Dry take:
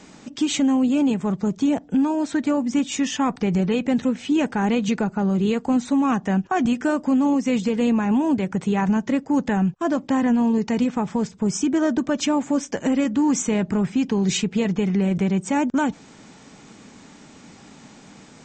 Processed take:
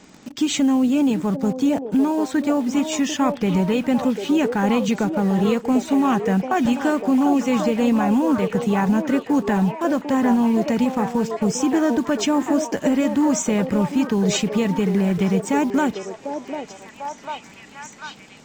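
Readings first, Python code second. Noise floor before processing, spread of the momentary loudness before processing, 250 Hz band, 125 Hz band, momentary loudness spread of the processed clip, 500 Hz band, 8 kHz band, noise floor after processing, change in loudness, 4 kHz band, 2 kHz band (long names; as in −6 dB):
−47 dBFS, 4 LU, +1.5 dB, +1.0 dB, 12 LU, +3.5 dB, +1.5 dB, −44 dBFS, +1.5 dB, +1.5 dB, +2.0 dB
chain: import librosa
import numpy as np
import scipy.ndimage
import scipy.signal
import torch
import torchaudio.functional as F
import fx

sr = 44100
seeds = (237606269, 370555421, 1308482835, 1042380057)

p1 = fx.quant_dither(x, sr, seeds[0], bits=6, dither='none')
p2 = x + (p1 * librosa.db_to_amplitude(-7.0))
p3 = fx.echo_stepped(p2, sr, ms=746, hz=530.0, octaves=0.7, feedback_pct=70, wet_db=-1.5)
y = p3 * librosa.db_to_amplitude(-2.0)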